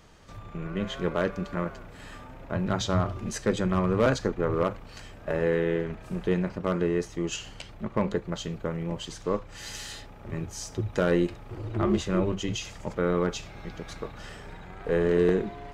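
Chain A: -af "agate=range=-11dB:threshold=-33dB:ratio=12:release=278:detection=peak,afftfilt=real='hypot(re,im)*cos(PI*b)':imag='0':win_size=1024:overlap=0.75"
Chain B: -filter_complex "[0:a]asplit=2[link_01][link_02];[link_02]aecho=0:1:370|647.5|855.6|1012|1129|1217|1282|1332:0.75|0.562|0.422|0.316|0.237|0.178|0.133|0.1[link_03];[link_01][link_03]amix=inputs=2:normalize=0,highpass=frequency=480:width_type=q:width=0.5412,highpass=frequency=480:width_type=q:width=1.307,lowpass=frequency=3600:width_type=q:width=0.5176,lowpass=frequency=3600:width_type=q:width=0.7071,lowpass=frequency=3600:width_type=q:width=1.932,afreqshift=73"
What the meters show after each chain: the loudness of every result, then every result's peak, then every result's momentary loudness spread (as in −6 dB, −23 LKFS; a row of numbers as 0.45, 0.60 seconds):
−31.5, −31.0 LKFS; −11.0, −13.0 dBFS; 14, 10 LU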